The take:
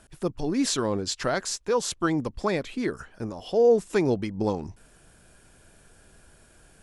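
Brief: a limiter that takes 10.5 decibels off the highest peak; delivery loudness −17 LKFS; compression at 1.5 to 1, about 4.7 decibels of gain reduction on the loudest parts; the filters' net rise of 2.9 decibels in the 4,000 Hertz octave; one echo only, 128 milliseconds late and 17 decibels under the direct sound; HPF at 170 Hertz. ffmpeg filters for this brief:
ffmpeg -i in.wav -af "highpass=170,equalizer=frequency=4000:width_type=o:gain=3.5,acompressor=threshold=-28dB:ratio=1.5,alimiter=limit=-21.5dB:level=0:latency=1,aecho=1:1:128:0.141,volume=15dB" out.wav

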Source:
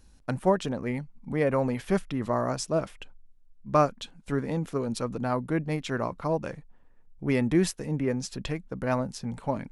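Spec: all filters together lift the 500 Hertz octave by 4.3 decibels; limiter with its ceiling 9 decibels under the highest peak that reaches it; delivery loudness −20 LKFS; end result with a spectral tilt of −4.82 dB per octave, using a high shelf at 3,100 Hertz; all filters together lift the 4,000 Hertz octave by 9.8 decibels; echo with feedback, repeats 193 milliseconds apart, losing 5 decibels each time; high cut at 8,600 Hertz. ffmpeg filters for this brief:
ffmpeg -i in.wav -af "lowpass=8600,equalizer=frequency=500:width_type=o:gain=5,highshelf=frequency=3100:gain=9,equalizer=frequency=4000:width_type=o:gain=5.5,alimiter=limit=-15.5dB:level=0:latency=1,aecho=1:1:193|386|579|772|965|1158|1351:0.562|0.315|0.176|0.0988|0.0553|0.031|0.0173,volume=7dB" out.wav

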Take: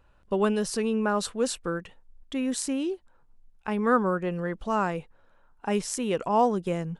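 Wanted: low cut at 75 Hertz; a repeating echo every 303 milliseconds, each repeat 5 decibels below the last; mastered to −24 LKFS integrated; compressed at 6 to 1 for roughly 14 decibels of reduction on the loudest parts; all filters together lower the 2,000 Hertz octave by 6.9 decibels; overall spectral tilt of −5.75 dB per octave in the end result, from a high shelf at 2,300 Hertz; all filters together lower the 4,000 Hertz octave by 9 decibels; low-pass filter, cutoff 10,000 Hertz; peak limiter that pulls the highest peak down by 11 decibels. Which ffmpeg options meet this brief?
ffmpeg -i in.wav -af "highpass=75,lowpass=10000,equalizer=frequency=2000:width_type=o:gain=-6.5,highshelf=frequency=2300:gain=-7,equalizer=frequency=4000:width_type=o:gain=-3,acompressor=threshold=-34dB:ratio=6,alimiter=level_in=10.5dB:limit=-24dB:level=0:latency=1,volume=-10.5dB,aecho=1:1:303|606|909|1212|1515|1818|2121:0.562|0.315|0.176|0.0988|0.0553|0.031|0.0173,volume=18.5dB" out.wav

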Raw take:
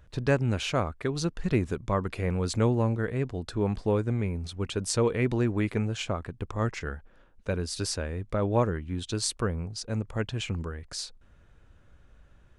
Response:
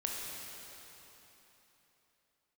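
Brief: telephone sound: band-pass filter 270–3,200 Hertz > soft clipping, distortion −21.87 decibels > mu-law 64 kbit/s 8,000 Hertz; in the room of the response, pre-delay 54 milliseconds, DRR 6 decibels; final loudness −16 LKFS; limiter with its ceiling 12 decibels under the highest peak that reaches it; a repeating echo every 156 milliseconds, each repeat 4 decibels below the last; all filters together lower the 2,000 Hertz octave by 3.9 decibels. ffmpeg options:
-filter_complex "[0:a]equalizer=frequency=2000:width_type=o:gain=-4.5,alimiter=limit=-22.5dB:level=0:latency=1,aecho=1:1:156|312|468|624|780|936|1092|1248|1404:0.631|0.398|0.25|0.158|0.0994|0.0626|0.0394|0.0249|0.0157,asplit=2[link_01][link_02];[1:a]atrim=start_sample=2205,adelay=54[link_03];[link_02][link_03]afir=irnorm=-1:irlink=0,volume=-9.5dB[link_04];[link_01][link_04]amix=inputs=2:normalize=0,highpass=270,lowpass=3200,asoftclip=threshold=-23dB,volume=20.5dB" -ar 8000 -c:a pcm_mulaw

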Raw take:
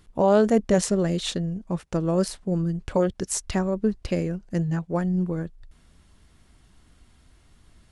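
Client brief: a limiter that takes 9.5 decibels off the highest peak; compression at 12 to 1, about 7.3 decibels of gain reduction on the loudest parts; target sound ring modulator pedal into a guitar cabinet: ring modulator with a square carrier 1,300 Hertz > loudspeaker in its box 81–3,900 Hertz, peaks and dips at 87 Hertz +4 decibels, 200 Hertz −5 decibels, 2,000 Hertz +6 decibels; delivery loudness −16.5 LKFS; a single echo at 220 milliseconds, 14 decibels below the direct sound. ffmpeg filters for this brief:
ffmpeg -i in.wav -af "acompressor=threshold=-21dB:ratio=12,alimiter=limit=-19.5dB:level=0:latency=1,aecho=1:1:220:0.2,aeval=exprs='val(0)*sgn(sin(2*PI*1300*n/s))':channel_layout=same,highpass=81,equalizer=frequency=87:width_type=q:width=4:gain=4,equalizer=frequency=200:width_type=q:width=4:gain=-5,equalizer=frequency=2000:width_type=q:width=4:gain=6,lowpass=frequency=3900:width=0.5412,lowpass=frequency=3900:width=1.3066,volume=11dB" out.wav

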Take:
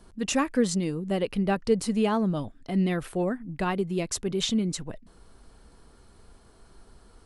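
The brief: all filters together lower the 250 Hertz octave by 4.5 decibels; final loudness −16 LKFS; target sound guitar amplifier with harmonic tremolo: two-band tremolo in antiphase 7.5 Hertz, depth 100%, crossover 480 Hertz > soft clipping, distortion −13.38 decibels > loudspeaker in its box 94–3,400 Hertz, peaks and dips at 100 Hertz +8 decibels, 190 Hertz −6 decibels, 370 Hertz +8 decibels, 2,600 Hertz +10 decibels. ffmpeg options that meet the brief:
ffmpeg -i in.wav -filter_complex "[0:a]equalizer=frequency=250:width_type=o:gain=-5.5,acrossover=split=480[link_01][link_02];[link_01]aeval=exprs='val(0)*(1-1/2+1/2*cos(2*PI*7.5*n/s))':channel_layout=same[link_03];[link_02]aeval=exprs='val(0)*(1-1/2-1/2*cos(2*PI*7.5*n/s))':channel_layout=same[link_04];[link_03][link_04]amix=inputs=2:normalize=0,asoftclip=threshold=-27.5dB,highpass=94,equalizer=frequency=100:width_type=q:width=4:gain=8,equalizer=frequency=190:width_type=q:width=4:gain=-6,equalizer=frequency=370:width_type=q:width=4:gain=8,equalizer=frequency=2600:width_type=q:width=4:gain=10,lowpass=frequency=3400:width=0.5412,lowpass=frequency=3400:width=1.3066,volume=20dB" out.wav

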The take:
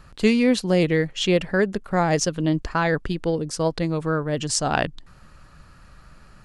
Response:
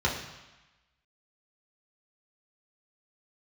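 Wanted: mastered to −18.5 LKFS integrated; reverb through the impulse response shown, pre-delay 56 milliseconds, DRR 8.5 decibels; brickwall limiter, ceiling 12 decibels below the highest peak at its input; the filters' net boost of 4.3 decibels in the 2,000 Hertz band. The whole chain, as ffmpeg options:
-filter_complex "[0:a]equalizer=frequency=2000:width_type=o:gain=5.5,alimiter=limit=-15.5dB:level=0:latency=1,asplit=2[link_01][link_02];[1:a]atrim=start_sample=2205,adelay=56[link_03];[link_02][link_03]afir=irnorm=-1:irlink=0,volume=-20dB[link_04];[link_01][link_04]amix=inputs=2:normalize=0,volume=6.5dB"

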